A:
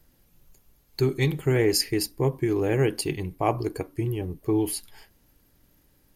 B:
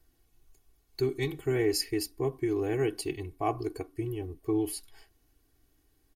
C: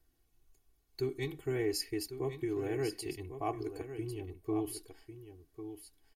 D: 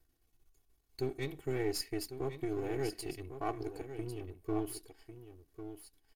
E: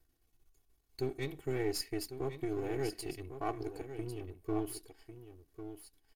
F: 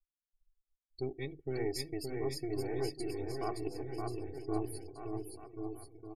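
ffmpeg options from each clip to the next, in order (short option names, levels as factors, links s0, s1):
-af "aecho=1:1:2.7:0.75,volume=0.376"
-af "aecho=1:1:1099:0.299,volume=0.501"
-af "aeval=exprs='if(lt(val(0),0),0.447*val(0),val(0))':c=same,volume=1.12"
-af anull
-af "afftdn=nr=35:nf=-46,aecho=1:1:570|1083|1545|1960|2334:0.631|0.398|0.251|0.158|0.1,volume=0.794"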